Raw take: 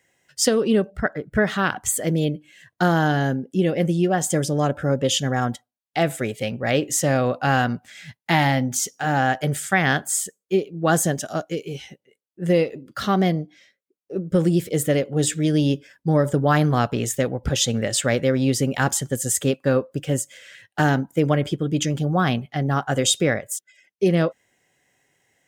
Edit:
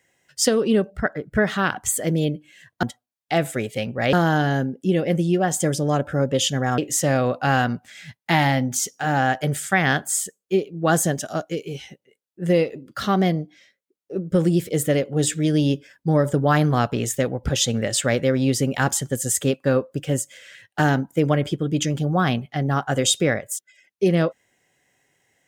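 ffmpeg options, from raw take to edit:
ffmpeg -i in.wav -filter_complex "[0:a]asplit=4[link_01][link_02][link_03][link_04];[link_01]atrim=end=2.832[link_05];[link_02]atrim=start=5.478:end=6.782[link_06];[link_03]atrim=start=2.828:end=5.482[link_07];[link_04]atrim=start=6.778[link_08];[link_05][link_06]acrossfade=duration=0.004:curve1=hsin:curve2=hsin[link_09];[link_09][link_07]acrossfade=duration=0.004:curve1=hsin:curve2=hsin[link_10];[link_10][link_08]acrossfade=duration=0.004:curve1=hsin:curve2=hsin" out.wav

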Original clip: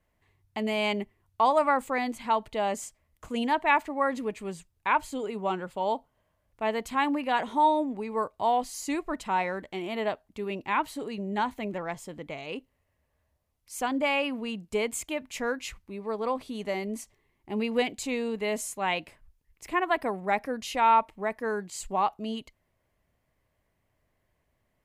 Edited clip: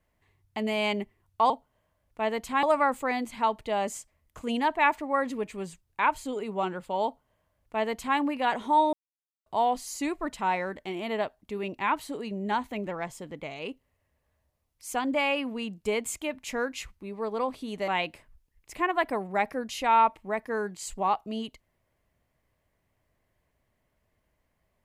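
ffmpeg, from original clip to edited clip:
ffmpeg -i in.wav -filter_complex "[0:a]asplit=6[link_01][link_02][link_03][link_04][link_05][link_06];[link_01]atrim=end=1.502[link_07];[link_02]atrim=start=5.918:end=7.052[link_08];[link_03]atrim=start=1.498:end=7.8,asetpts=PTS-STARTPTS,afade=type=out:start_time=6.298:duration=0.004:curve=hsin[link_09];[link_04]atrim=start=7.8:end=8.33,asetpts=PTS-STARTPTS,volume=0[link_10];[link_05]atrim=start=8.33:end=16.752,asetpts=PTS-STARTPTS,afade=type=in:duration=0.004:curve=hsin[link_11];[link_06]atrim=start=18.808[link_12];[link_07][link_08]acrossfade=duration=0.004:curve1=hsin:curve2=hsin[link_13];[link_09][link_10][link_11]concat=n=3:v=0:a=1[link_14];[link_13][link_14]acrossfade=duration=0.004:curve1=hsin:curve2=hsin[link_15];[link_15][link_12]acrossfade=duration=0.004:curve1=hsin:curve2=hsin" out.wav

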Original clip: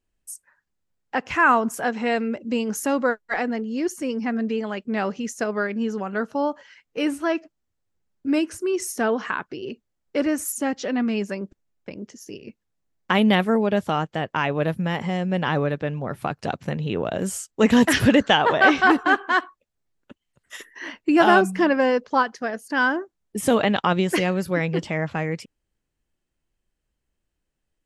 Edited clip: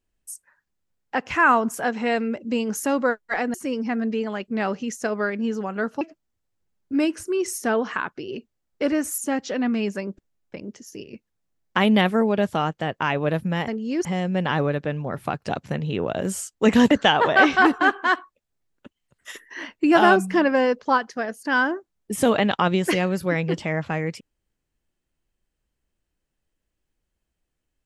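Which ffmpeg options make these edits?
ffmpeg -i in.wav -filter_complex "[0:a]asplit=6[link_01][link_02][link_03][link_04][link_05][link_06];[link_01]atrim=end=3.542[link_07];[link_02]atrim=start=3.908:end=6.382[link_08];[link_03]atrim=start=7.348:end=15.022[link_09];[link_04]atrim=start=3.538:end=3.912[link_10];[link_05]atrim=start=15.018:end=17.882[link_11];[link_06]atrim=start=18.158[link_12];[link_07][link_08]acrossfade=duration=0.004:curve1=hsin:curve2=hsin[link_13];[link_13][link_09]acrossfade=duration=0.004:curve1=hsin:curve2=hsin[link_14];[link_14][link_10]acrossfade=duration=0.004:curve1=hsin:curve2=hsin[link_15];[link_15][link_11]acrossfade=duration=0.004:curve1=hsin:curve2=hsin[link_16];[link_16][link_12]acrossfade=duration=0.004:curve1=hsin:curve2=hsin" out.wav

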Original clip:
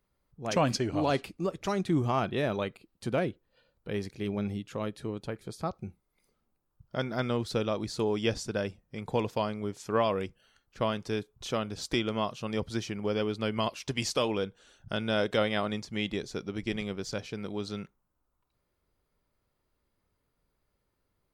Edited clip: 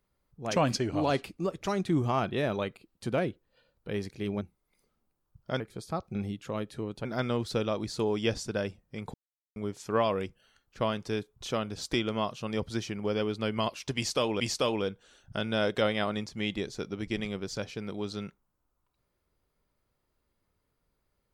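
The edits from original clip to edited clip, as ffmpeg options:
ffmpeg -i in.wav -filter_complex "[0:a]asplit=8[link_01][link_02][link_03][link_04][link_05][link_06][link_07][link_08];[link_01]atrim=end=4.412[link_09];[link_02]atrim=start=5.858:end=7.052[link_10];[link_03]atrim=start=5.308:end=5.862[link_11];[link_04]atrim=start=4.408:end=5.312[link_12];[link_05]atrim=start=7.048:end=9.14,asetpts=PTS-STARTPTS,afade=type=out:start_time=2.088:duration=0.004:curve=hsin[link_13];[link_06]atrim=start=9.14:end=9.56,asetpts=PTS-STARTPTS,volume=0[link_14];[link_07]atrim=start=9.56:end=14.402,asetpts=PTS-STARTPTS,afade=type=in:duration=0.004:curve=hsin[link_15];[link_08]atrim=start=13.958[link_16];[link_09][link_10]acrossfade=duration=0.004:curve1=hsin:curve2=hsin[link_17];[link_17][link_11]acrossfade=duration=0.004:curve1=hsin:curve2=hsin[link_18];[link_18][link_12]acrossfade=duration=0.004:curve1=hsin:curve2=hsin[link_19];[link_13][link_14][link_15]concat=n=3:v=0:a=1[link_20];[link_19][link_20]acrossfade=duration=0.004:curve1=hsin:curve2=hsin[link_21];[link_21][link_16]acrossfade=duration=0.004:curve1=hsin:curve2=hsin" out.wav

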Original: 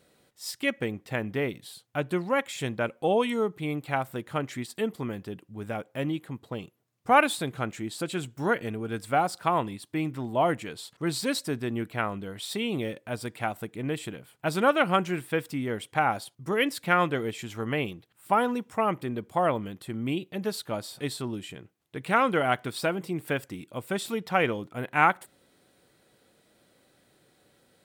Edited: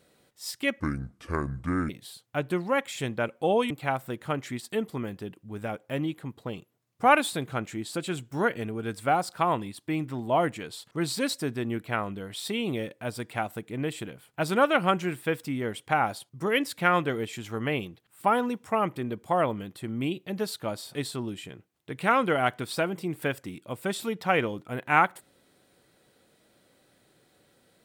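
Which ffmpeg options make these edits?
ffmpeg -i in.wav -filter_complex "[0:a]asplit=4[link_01][link_02][link_03][link_04];[link_01]atrim=end=0.804[link_05];[link_02]atrim=start=0.8:end=1.5,asetpts=PTS-STARTPTS,asetrate=28224,aresample=44100,atrim=end_sample=48234,asetpts=PTS-STARTPTS[link_06];[link_03]atrim=start=1.496:end=3.312[link_07];[link_04]atrim=start=3.758[link_08];[link_05][link_06]acrossfade=duration=0.004:curve1=hsin:curve2=hsin[link_09];[link_09][link_07]acrossfade=duration=0.004:curve1=hsin:curve2=hsin[link_10];[link_10][link_08]acrossfade=duration=0.004:curve1=hsin:curve2=hsin" out.wav

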